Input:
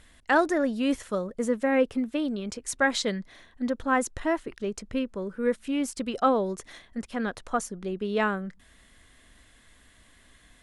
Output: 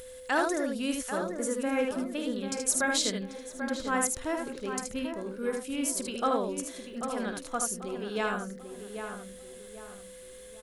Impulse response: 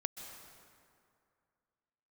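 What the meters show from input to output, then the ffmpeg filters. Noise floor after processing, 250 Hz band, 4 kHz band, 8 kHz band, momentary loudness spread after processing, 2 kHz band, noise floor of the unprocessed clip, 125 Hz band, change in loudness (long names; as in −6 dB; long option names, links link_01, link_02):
−47 dBFS, −4.5 dB, +1.0 dB, +7.0 dB, 17 LU, −3.5 dB, −59 dBFS, −4.5 dB, −3.0 dB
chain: -filter_complex "[0:a]aemphasis=mode=production:type=75fm,bandreject=frequency=1900:width=16,asplit=2[link_01][link_02];[link_02]aecho=0:1:51|77:0.251|0.596[link_03];[link_01][link_03]amix=inputs=2:normalize=0,acompressor=mode=upward:threshold=-40dB:ratio=2.5,aeval=exprs='val(0)+0.0126*sin(2*PI*510*n/s)':channel_layout=same,asplit=2[link_04][link_05];[link_05]adelay=789,lowpass=frequency=2000:poles=1,volume=-7.5dB,asplit=2[link_06][link_07];[link_07]adelay=789,lowpass=frequency=2000:poles=1,volume=0.38,asplit=2[link_08][link_09];[link_09]adelay=789,lowpass=frequency=2000:poles=1,volume=0.38,asplit=2[link_10][link_11];[link_11]adelay=789,lowpass=frequency=2000:poles=1,volume=0.38[link_12];[link_06][link_08][link_10][link_12]amix=inputs=4:normalize=0[link_13];[link_04][link_13]amix=inputs=2:normalize=0,volume=-6dB"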